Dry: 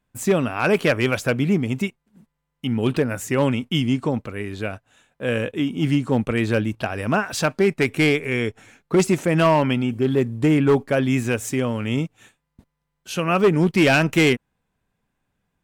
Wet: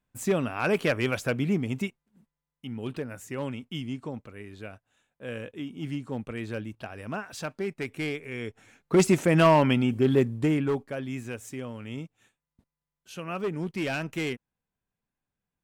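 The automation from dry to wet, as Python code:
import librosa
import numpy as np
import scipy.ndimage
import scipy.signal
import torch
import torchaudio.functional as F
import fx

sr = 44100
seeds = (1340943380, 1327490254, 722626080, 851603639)

y = fx.gain(x, sr, db=fx.line((1.85, -6.5), (2.65, -13.5), (8.32, -13.5), (9.03, -2.0), (10.18, -2.0), (10.94, -14.0)))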